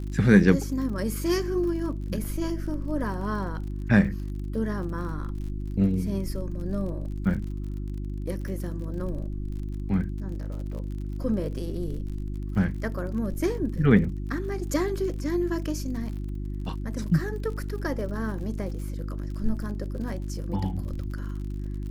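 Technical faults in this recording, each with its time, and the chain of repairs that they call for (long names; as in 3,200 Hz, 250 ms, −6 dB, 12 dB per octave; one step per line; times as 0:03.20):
surface crackle 46 per second −37 dBFS
mains hum 50 Hz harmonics 7 −32 dBFS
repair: click removal
hum removal 50 Hz, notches 7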